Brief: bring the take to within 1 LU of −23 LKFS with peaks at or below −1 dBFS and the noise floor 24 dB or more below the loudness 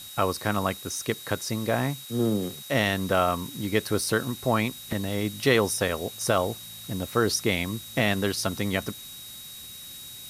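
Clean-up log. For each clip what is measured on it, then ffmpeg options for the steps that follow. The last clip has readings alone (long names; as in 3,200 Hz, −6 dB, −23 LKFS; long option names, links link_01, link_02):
interfering tone 3,800 Hz; level of the tone −43 dBFS; background noise floor −42 dBFS; target noise floor −51 dBFS; integrated loudness −27.0 LKFS; sample peak −7.5 dBFS; target loudness −23.0 LKFS
→ -af "bandreject=frequency=3800:width=30"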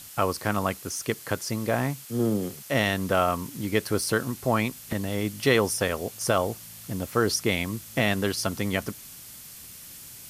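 interfering tone none found; background noise floor −45 dBFS; target noise floor −51 dBFS
→ -af "afftdn=noise_reduction=6:noise_floor=-45"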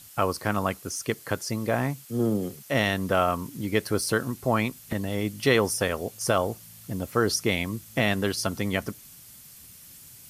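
background noise floor −49 dBFS; target noise floor −51 dBFS
→ -af "afftdn=noise_reduction=6:noise_floor=-49"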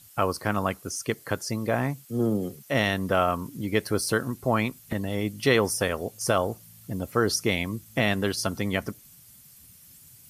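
background noise floor −52 dBFS; integrated loudness −27.0 LKFS; sample peak −8.0 dBFS; target loudness −23.0 LKFS
→ -af "volume=4dB"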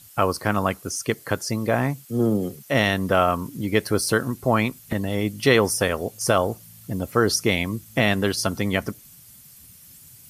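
integrated loudness −23.0 LKFS; sample peak −4.0 dBFS; background noise floor −48 dBFS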